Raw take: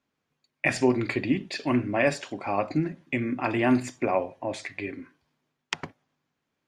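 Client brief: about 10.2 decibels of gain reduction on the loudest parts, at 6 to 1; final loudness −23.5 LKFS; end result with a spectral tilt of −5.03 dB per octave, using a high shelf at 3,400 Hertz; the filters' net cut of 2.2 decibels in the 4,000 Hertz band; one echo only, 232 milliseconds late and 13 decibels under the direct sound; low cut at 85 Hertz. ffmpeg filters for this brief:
ffmpeg -i in.wav -af "highpass=85,highshelf=frequency=3400:gain=4,equalizer=frequency=4000:width_type=o:gain=-6,acompressor=threshold=-28dB:ratio=6,aecho=1:1:232:0.224,volume=10.5dB" out.wav

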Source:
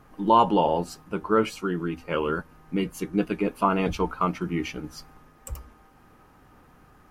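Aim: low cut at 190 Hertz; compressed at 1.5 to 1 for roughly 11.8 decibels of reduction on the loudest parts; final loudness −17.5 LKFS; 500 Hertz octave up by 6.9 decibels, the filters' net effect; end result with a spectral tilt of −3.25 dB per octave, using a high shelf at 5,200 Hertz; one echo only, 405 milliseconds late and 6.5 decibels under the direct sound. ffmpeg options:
ffmpeg -i in.wav -af "highpass=190,equalizer=frequency=500:width_type=o:gain=8.5,highshelf=frequency=5200:gain=-8.5,acompressor=threshold=-45dB:ratio=1.5,aecho=1:1:405:0.473,volume=14.5dB" out.wav

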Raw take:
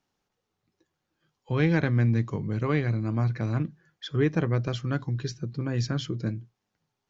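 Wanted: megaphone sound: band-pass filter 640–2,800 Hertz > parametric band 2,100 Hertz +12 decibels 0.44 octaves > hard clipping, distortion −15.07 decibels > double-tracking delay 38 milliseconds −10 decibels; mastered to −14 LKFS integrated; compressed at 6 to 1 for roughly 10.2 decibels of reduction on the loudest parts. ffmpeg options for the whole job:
ffmpeg -i in.wav -filter_complex "[0:a]acompressor=threshold=-30dB:ratio=6,highpass=640,lowpass=2800,equalizer=frequency=2100:width_type=o:width=0.44:gain=12,asoftclip=type=hard:threshold=-32dB,asplit=2[link_01][link_02];[link_02]adelay=38,volume=-10dB[link_03];[link_01][link_03]amix=inputs=2:normalize=0,volume=29.5dB" out.wav

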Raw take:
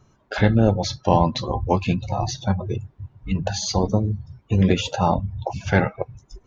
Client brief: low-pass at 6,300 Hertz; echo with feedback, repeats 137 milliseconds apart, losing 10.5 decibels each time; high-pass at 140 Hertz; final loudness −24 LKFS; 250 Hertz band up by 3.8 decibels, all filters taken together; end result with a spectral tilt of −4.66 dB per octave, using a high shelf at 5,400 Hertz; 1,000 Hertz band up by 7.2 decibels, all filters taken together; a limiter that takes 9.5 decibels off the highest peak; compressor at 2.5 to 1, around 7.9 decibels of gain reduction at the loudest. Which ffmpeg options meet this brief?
ffmpeg -i in.wav -af "highpass=140,lowpass=6300,equalizer=frequency=250:width_type=o:gain=6,equalizer=frequency=1000:width_type=o:gain=8.5,highshelf=frequency=5400:gain=7.5,acompressor=threshold=-19dB:ratio=2.5,alimiter=limit=-13.5dB:level=0:latency=1,aecho=1:1:137|274|411:0.299|0.0896|0.0269,volume=2.5dB" out.wav

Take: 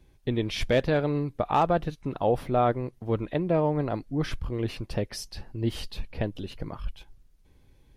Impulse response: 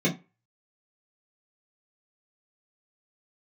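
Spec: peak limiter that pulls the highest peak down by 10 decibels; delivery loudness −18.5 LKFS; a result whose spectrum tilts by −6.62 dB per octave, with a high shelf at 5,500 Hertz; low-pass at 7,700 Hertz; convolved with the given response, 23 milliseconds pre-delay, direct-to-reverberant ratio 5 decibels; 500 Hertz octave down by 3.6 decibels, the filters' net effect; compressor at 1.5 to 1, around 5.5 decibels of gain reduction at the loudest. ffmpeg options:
-filter_complex "[0:a]lowpass=7700,equalizer=frequency=500:width_type=o:gain=-4.5,highshelf=frequency=5500:gain=6,acompressor=threshold=-36dB:ratio=1.5,alimiter=level_in=4dB:limit=-24dB:level=0:latency=1,volume=-4dB,asplit=2[link_01][link_02];[1:a]atrim=start_sample=2205,adelay=23[link_03];[link_02][link_03]afir=irnorm=-1:irlink=0,volume=-17dB[link_04];[link_01][link_04]amix=inputs=2:normalize=0,volume=15dB"

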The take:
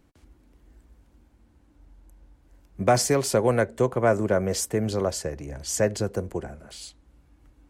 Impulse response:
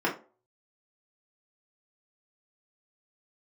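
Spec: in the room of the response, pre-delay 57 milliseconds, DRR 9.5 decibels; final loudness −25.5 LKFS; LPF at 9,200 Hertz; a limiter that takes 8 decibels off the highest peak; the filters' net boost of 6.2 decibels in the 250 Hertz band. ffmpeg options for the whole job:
-filter_complex "[0:a]lowpass=9200,equalizer=frequency=250:width_type=o:gain=8,alimiter=limit=-14dB:level=0:latency=1,asplit=2[link_01][link_02];[1:a]atrim=start_sample=2205,adelay=57[link_03];[link_02][link_03]afir=irnorm=-1:irlink=0,volume=-21.5dB[link_04];[link_01][link_04]amix=inputs=2:normalize=0"

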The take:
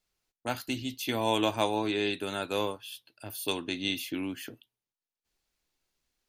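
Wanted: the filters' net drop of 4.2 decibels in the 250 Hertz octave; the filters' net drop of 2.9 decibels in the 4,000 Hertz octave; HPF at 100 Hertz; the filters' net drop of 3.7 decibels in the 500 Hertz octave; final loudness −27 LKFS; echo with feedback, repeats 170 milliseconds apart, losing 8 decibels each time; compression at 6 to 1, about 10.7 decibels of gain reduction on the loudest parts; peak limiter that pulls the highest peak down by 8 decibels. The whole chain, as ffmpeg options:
ffmpeg -i in.wav -af "highpass=100,equalizer=frequency=250:width_type=o:gain=-4,equalizer=frequency=500:width_type=o:gain=-3.5,equalizer=frequency=4000:width_type=o:gain=-3.5,acompressor=threshold=-36dB:ratio=6,alimiter=level_in=5.5dB:limit=-24dB:level=0:latency=1,volume=-5.5dB,aecho=1:1:170|340|510|680|850:0.398|0.159|0.0637|0.0255|0.0102,volume=14.5dB" out.wav

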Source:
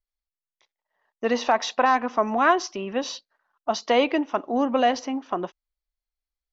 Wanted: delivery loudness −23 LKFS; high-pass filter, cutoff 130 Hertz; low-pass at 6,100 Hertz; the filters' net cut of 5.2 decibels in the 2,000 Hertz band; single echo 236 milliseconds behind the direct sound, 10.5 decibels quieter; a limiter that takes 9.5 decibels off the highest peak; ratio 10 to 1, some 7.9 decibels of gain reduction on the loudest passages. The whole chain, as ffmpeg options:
ffmpeg -i in.wav -af "highpass=130,lowpass=6100,equalizer=frequency=2000:width_type=o:gain=-7,acompressor=threshold=-24dB:ratio=10,alimiter=limit=-22dB:level=0:latency=1,aecho=1:1:236:0.299,volume=10dB" out.wav

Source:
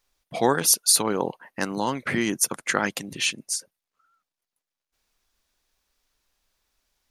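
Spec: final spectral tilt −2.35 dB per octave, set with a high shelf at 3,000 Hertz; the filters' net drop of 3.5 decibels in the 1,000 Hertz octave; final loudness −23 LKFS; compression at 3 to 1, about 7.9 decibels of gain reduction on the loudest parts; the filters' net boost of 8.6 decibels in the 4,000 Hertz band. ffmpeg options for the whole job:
ffmpeg -i in.wav -af "equalizer=frequency=1000:width_type=o:gain=-5.5,highshelf=frequency=3000:gain=5.5,equalizer=frequency=4000:width_type=o:gain=6.5,acompressor=threshold=-18dB:ratio=3" out.wav

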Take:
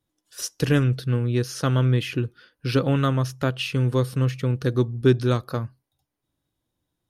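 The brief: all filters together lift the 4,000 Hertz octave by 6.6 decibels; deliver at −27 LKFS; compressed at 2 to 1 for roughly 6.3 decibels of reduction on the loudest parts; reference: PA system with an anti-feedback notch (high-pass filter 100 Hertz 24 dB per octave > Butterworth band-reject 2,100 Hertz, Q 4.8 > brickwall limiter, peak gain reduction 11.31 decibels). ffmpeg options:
ffmpeg -i in.wav -af "equalizer=frequency=4000:width_type=o:gain=9,acompressor=threshold=-23dB:ratio=2,highpass=frequency=100:width=0.5412,highpass=frequency=100:width=1.3066,asuperstop=centerf=2100:order=8:qfactor=4.8,volume=3.5dB,alimiter=limit=-16.5dB:level=0:latency=1" out.wav

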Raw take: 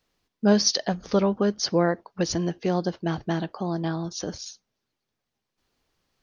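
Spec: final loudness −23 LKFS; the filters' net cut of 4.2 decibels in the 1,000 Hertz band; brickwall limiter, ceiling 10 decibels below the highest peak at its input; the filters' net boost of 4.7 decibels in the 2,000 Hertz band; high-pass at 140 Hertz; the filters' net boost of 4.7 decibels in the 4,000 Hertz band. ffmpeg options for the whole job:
ffmpeg -i in.wav -af "highpass=140,equalizer=frequency=1000:width_type=o:gain=-8.5,equalizer=frequency=2000:width_type=o:gain=8.5,equalizer=frequency=4000:width_type=o:gain=5,volume=5dB,alimiter=limit=-10dB:level=0:latency=1" out.wav

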